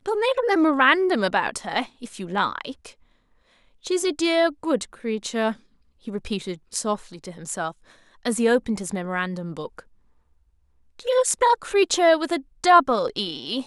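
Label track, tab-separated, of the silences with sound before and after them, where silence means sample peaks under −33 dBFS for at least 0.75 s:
2.890000	3.850000	silence
9.800000	10.990000	silence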